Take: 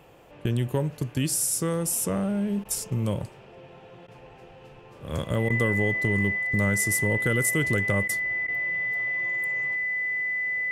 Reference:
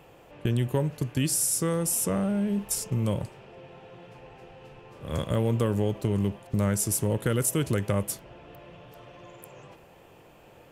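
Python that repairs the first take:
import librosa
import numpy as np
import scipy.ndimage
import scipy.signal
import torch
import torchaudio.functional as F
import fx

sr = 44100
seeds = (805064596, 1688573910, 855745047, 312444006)

y = fx.notch(x, sr, hz=2000.0, q=30.0)
y = fx.fix_interpolate(y, sr, at_s=(2.64, 4.07, 5.49, 8.08, 8.47), length_ms=10.0)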